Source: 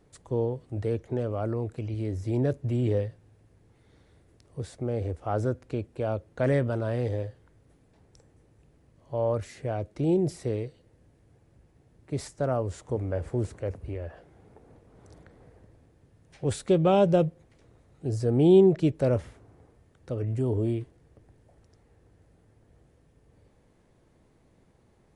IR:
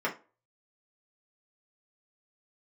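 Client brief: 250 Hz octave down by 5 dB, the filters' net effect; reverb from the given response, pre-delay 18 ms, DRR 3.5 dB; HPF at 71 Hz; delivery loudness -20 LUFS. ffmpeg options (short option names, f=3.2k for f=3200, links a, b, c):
-filter_complex "[0:a]highpass=71,equalizer=f=250:t=o:g=-8.5,asplit=2[a][b];[1:a]atrim=start_sample=2205,adelay=18[c];[b][c]afir=irnorm=-1:irlink=0,volume=-12.5dB[d];[a][d]amix=inputs=2:normalize=0,volume=9.5dB"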